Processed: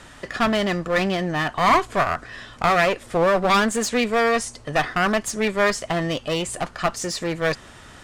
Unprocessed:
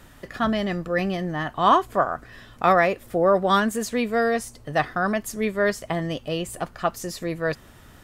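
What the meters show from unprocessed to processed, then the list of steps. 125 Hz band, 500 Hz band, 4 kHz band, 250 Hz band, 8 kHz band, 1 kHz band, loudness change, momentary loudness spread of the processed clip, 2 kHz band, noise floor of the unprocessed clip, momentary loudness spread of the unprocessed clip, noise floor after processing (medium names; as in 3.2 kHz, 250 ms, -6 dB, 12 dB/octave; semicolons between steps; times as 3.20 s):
+2.0 dB, +1.0 dB, +6.5 dB, +1.0 dB, +7.0 dB, +1.0 dB, +2.0 dB, 7 LU, +4.5 dB, -49 dBFS, 10 LU, -45 dBFS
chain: low-pass 9.1 kHz 24 dB/octave; bass shelf 430 Hz -7.5 dB; in parallel at +1 dB: peak limiter -15.5 dBFS, peak gain reduction 9 dB; on the sum: one-sided clip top -25 dBFS; trim +2 dB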